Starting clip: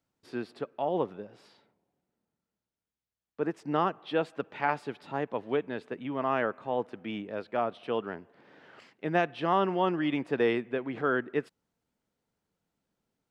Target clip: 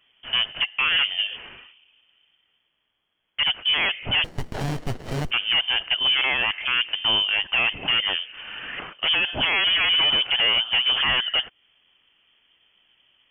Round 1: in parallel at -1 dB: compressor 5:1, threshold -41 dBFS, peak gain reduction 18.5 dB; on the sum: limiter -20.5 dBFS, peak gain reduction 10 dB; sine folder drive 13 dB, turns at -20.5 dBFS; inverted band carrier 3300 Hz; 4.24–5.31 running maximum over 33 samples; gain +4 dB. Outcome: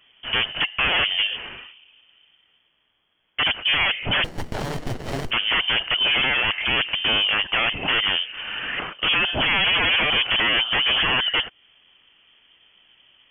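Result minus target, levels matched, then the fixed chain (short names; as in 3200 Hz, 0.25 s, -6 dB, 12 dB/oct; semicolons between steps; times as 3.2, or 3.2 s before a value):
sine folder: distortion +14 dB
in parallel at -1 dB: compressor 5:1, threshold -41 dBFS, peak gain reduction 18.5 dB; on the sum: limiter -20.5 dBFS, peak gain reduction 10 dB; sine folder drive 7 dB, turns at -20.5 dBFS; inverted band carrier 3300 Hz; 4.24–5.31 running maximum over 33 samples; gain +4 dB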